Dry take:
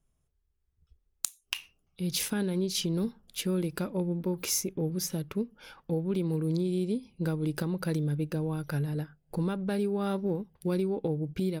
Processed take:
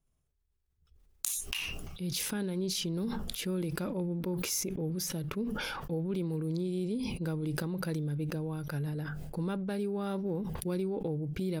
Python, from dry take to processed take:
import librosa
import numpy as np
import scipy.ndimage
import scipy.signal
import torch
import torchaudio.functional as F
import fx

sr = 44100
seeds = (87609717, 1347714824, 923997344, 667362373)

y = fx.sustainer(x, sr, db_per_s=22.0)
y = y * 10.0 ** (-4.5 / 20.0)